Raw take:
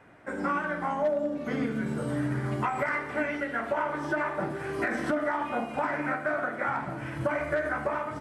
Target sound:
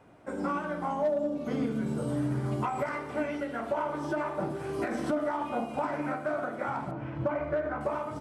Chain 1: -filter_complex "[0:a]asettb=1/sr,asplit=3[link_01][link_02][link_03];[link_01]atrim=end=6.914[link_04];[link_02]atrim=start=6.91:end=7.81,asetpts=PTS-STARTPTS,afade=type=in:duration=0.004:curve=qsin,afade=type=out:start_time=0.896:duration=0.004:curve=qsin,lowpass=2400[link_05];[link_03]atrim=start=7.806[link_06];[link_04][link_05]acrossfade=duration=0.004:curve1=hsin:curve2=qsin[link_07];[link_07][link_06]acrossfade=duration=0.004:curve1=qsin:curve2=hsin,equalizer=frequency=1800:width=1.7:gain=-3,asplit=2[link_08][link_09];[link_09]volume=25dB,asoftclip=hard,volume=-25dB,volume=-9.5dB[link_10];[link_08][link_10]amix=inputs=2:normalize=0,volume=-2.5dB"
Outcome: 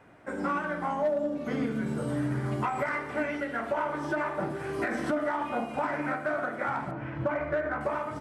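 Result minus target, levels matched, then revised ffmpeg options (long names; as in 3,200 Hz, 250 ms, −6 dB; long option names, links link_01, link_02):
2,000 Hz band +4.5 dB
-filter_complex "[0:a]asettb=1/sr,asplit=3[link_01][link_02][link_03];[link_01]atrim=end=6.914[link_04];[link_02]atrim=start=6.91:end=7.81,asetpts=PTS-STARTPTS,afade=type=in:duration=0.004:curve=qsin,afade=type=out:start_time=0.896:duration=0.004:curve=qsin,lowpass=2400[link_05];[link_03]atrim=start=7.806[link_06];[link_04][link_05]acrossfade=duration=0.004:curve1=hsin:curve2=qsin[link_07];[link_07][link_06]acrossfade=duration=0.004:curve1=qsin:curve2=hsin,equalizer=frequency=1800:width=1.7:gain=-11,asplit=2[link_08][link_09];[link_09]volume=25dB,asoftclip=hard,volume=-25dB,volume=-9.5dB[link_10];[link_08][link_10]amix=inputs=2:normalize=0,volume=-2.5dB"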